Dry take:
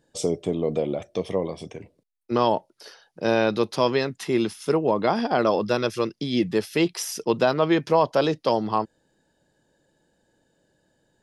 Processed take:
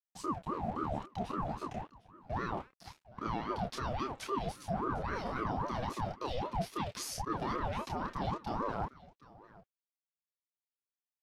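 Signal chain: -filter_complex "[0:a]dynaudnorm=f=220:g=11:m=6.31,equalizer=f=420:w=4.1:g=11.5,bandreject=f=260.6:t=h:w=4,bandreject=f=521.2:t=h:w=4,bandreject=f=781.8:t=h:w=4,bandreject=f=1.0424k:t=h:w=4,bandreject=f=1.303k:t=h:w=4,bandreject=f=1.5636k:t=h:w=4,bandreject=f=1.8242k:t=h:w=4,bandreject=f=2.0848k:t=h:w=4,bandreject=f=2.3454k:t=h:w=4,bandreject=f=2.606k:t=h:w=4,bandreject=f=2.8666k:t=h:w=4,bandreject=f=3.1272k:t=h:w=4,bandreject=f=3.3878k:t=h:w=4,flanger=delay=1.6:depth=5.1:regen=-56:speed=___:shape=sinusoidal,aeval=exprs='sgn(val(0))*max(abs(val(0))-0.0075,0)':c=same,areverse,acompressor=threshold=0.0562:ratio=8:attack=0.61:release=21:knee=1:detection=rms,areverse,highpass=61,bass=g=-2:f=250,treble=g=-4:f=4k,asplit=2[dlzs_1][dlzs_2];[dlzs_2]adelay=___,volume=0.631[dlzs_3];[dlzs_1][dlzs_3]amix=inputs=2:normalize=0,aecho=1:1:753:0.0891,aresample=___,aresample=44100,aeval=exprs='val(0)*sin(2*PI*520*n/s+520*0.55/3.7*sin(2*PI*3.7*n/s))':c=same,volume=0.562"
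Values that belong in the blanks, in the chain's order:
0.9, 28, 32000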